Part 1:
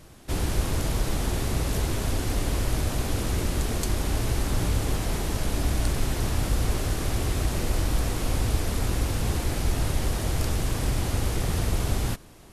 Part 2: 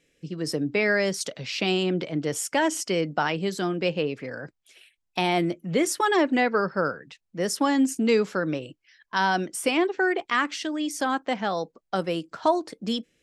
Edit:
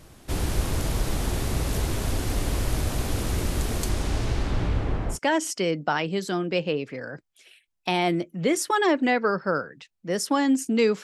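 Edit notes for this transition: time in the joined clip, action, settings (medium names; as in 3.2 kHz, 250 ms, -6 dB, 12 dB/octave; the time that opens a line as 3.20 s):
part 1
3.89–5.19 s: low-pass 11 kHz -> 1.3 kHz
5.14 s: go over to part 2 from 2.44 s, crossfade 0.10 s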